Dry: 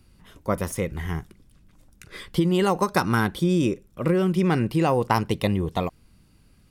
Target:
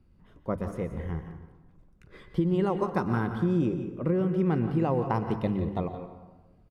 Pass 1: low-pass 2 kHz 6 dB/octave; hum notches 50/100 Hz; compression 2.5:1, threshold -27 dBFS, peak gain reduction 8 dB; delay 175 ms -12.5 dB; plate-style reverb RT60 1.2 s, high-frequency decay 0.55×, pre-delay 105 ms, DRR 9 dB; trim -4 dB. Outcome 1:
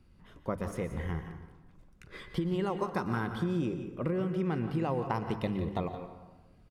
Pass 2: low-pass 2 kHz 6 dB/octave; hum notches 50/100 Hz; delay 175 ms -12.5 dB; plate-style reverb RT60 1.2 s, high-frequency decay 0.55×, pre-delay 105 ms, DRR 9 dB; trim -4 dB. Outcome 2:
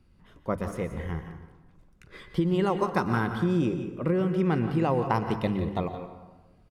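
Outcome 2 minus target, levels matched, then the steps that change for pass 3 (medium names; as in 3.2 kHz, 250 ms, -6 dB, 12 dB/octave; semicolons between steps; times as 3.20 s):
2 kHz band +4.5 dB
change: low-pass 740 Hz 6 dB/octave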